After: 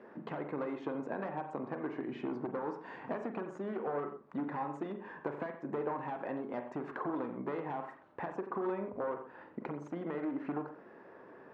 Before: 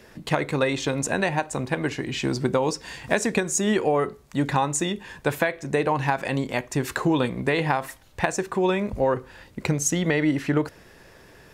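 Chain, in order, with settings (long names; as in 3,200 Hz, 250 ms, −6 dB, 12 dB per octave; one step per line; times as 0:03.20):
wavefolder on the positive side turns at −19 dBFS
downward compressor 6 to 1, threshold −32 dBFS, peak gain reduction 13.5 dB
Chebyshev band-pass filter 260–1,200 Hz, order 2
convolution reverb, pre-delay 41 ms, DRR 7 dB
level −1 dB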